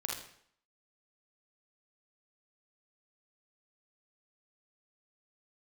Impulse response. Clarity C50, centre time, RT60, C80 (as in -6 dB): 1.0 dB, 45 ms, 0.65 s, 7.0 dB